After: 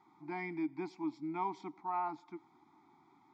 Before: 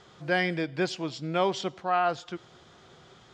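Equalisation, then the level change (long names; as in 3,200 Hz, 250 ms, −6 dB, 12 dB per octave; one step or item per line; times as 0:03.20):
formant filter u
bass and treble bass −6 dB, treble −1 dB
phaser with its sweep stopped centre 1,200 Hz, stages 4
+8.5 dB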